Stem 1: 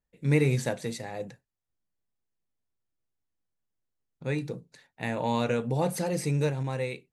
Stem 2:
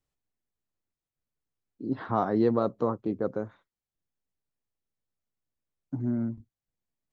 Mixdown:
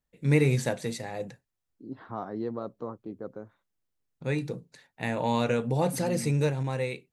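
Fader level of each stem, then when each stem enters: +1.0 dB, -9.5 dB; 0.00 s, 0.00 s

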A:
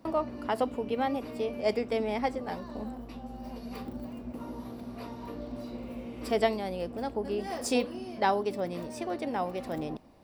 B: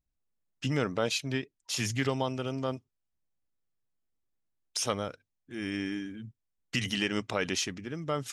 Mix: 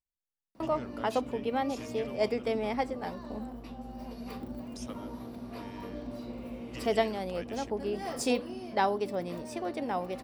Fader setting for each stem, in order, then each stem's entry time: -1.0 dB, -16.0 dB; 0.55 s, 0.00 s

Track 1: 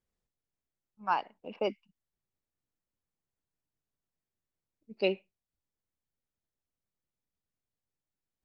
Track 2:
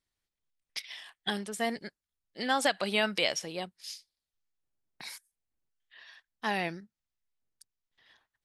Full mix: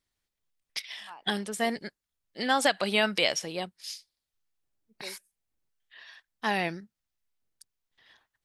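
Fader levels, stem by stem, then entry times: -18.0 dB, +3.0 dB; 0.00 s, 0.00 s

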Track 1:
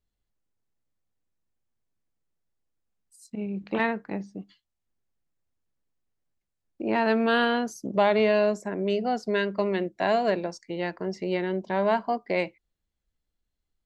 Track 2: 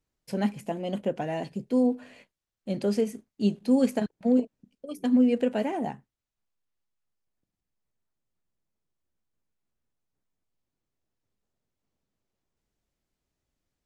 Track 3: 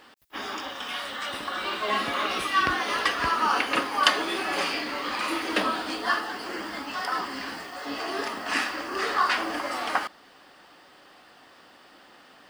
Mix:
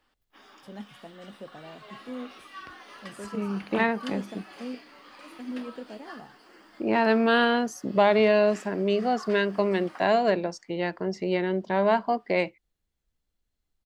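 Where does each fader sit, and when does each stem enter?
+1.5 dB, -14.5 dB, -20.0 dB; 0.00 s, 0.35 s, 0.00 s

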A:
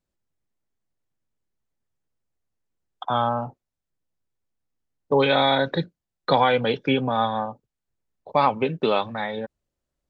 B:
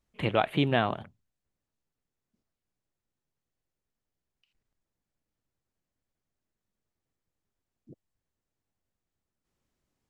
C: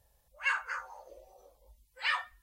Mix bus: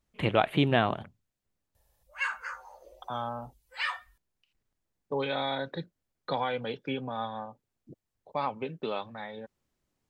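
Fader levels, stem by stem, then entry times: -12.0 dB, +1.0 dB, -1.0 dB; 0.00 s, 0.00 s, 1.75 s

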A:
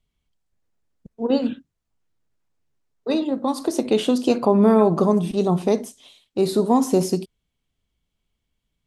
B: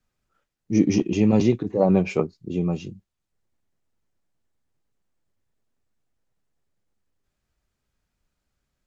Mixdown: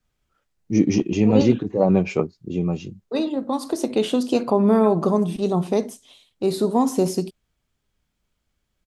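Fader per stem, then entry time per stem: -1.5 dB, +1.0 dB; 0.05 s, 0.00 s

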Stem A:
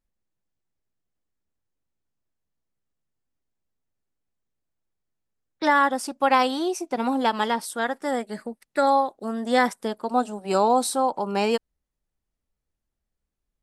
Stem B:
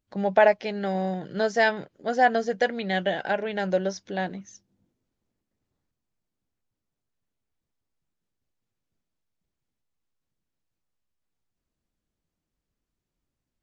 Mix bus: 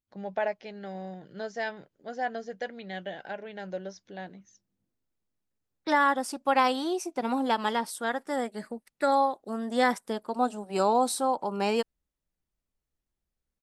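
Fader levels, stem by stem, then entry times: -4.0 dB, -11.5 dB; 0.25 s, 0.00 s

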